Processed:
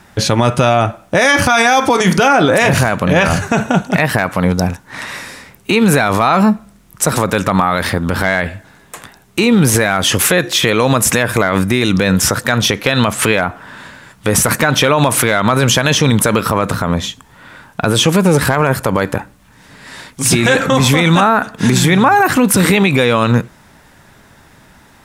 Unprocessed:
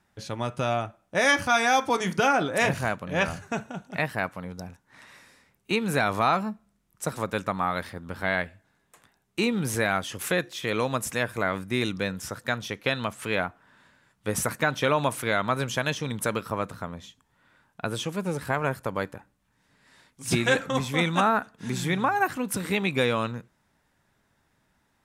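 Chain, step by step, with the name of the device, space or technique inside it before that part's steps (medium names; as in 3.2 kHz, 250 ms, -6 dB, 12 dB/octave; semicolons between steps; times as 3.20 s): loud club master (compression 2:1, threshold -27 dBFS, peak gain reduction 6.5 dB; hard clipper -17 dBFS, distortion -31 dB; loudness maximiser +26 dB); trim -1.5 dB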